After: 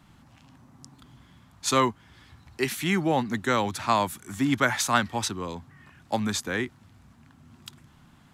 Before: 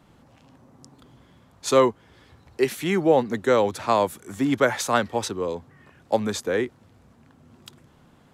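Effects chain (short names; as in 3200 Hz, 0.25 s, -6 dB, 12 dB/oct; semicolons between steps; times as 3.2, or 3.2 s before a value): bell 480 Hz -14 dB 0.94 oct; gain +2 dB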